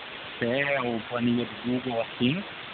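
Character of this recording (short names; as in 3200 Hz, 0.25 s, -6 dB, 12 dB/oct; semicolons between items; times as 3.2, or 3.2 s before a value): phasing stages 12, 2.4 Hz, lowest notch 300–2500 Hz; a quantiser's noise floor 6-bit, dither triangular; AMR-NB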